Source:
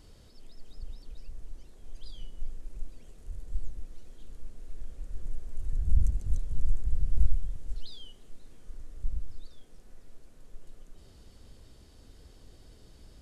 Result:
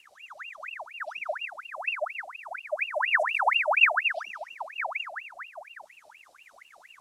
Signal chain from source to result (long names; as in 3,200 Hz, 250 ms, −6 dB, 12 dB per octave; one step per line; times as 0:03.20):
bass and treble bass +7 dB, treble +11 dB
mains-hum notches 60/120 Hz
feedback delay with all-pass diffusion 476 ms, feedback 52%, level −12.5 dB
time stretch by phase vocoder 0.53×
convolution reverb RT60 0.95 s, pre-delay 118 ms, DRR 8 dB
ring modulator whose carrier an LFO sweeps 1,700 Hz, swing 65%, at 4.2 Hz
level −4.5 dB